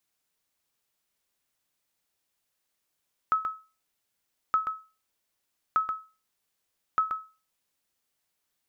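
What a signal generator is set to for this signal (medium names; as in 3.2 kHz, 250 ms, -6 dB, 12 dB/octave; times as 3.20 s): sonar ping 1.29 kHz, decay 0.32 s, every 1.22 s, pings 4, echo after 0.13 s, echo -6.5 dB -16.5 dBFS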